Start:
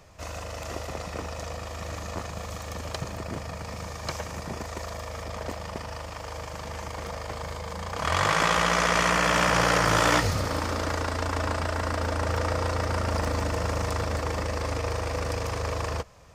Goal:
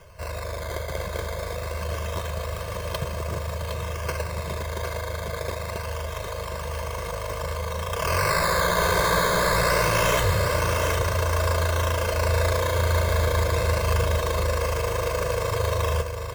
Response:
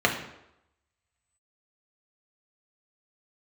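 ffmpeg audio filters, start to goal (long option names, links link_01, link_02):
-filter_complex "[0:a]acrusher=samples=11:mix=1:aa=0.000001:lfo=1:lforange=11:lforate=0.25,asoftclip=type=hard:threshold=-22.5dB,aecho=1:1:1.9:0.85,asplit=2[link_01][link_02];[link_02]aecho=0:1:761:0.473[link_03];[link_01][link_03]amix=inputs=2:normalize=0,volume=1dB"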